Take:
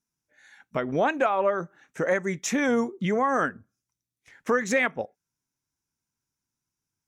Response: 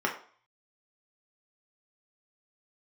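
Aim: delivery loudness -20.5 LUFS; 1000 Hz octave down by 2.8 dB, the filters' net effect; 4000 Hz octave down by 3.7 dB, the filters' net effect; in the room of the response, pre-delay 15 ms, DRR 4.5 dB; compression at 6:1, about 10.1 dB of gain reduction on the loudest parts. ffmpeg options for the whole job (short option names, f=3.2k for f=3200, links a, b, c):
-filter_complex "[0:a]equalizer=f=1k:t=o:g=-3.5,equalizer=f=4k:t=o:g=-5,acompressor=threshold=-31dB:ratio=6,asplit=2[a][b];[1:a]atrim=start_sample=2205,adelay=15[c];[b][c]afir=irnorm=-1:irlink=0,volume=-15dB[d];[a][d]amix=inputs=2:normalize=0,volume=14dB"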